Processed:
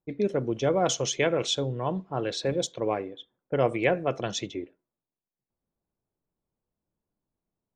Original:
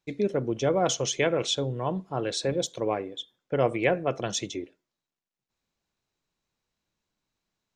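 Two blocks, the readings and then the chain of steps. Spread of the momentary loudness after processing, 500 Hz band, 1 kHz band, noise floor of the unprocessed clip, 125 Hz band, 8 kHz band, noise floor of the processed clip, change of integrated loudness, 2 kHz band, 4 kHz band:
10 LU, 0.0 dB, 0.0 dB, under -85 dBFS, 0.0 dB, -1.0 dB, under -85 dBFS, 0.0 dB, 0.0 dB, -0.5 dB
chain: low-pass opened by the level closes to 720 Hz, open at -22.5 dBFS

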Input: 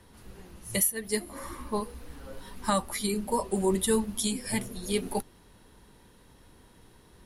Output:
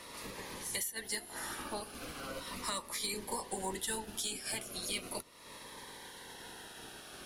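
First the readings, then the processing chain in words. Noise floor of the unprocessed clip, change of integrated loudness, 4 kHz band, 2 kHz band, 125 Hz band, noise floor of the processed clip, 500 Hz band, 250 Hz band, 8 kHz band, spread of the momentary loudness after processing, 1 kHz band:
-57 dBFS, -9.5 dB, -2.0 dB, -2.5 dB, -14.0 dB, -52 dBFS, -13.0 dB, -15.5 dB, -6.0 dB, 12 LU, -8.0 dB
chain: spectral limiter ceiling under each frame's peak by 15 dB; compressor 3:1, threshold -45 dBFS, peak gain reduction 17.5 dB; overdrive pedal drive 13 dB, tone 6000 Hz, clips at -24.5 dBFS; cascading phaser falling 0.38 Hz; gain +2.5 dB

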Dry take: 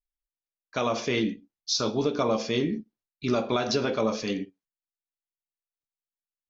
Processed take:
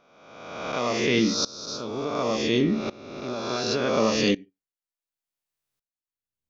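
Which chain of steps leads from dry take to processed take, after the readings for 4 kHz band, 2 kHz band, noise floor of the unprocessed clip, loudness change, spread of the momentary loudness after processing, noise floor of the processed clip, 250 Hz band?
+3.5 dB, +4.5 dB, under -85 dBFS, +2.5 dB, 12 LU, under -85 dBFS, +3.0 dB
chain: spectral swells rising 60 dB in 1.65 s; in parallel at -2.5 dB: compressor, threshold -32 dBFS, peak gain reduction 14 dB; on the sum: dB-ramp tremolo swelling 0.69 Hz, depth 22 dB; gain +4.5 dB

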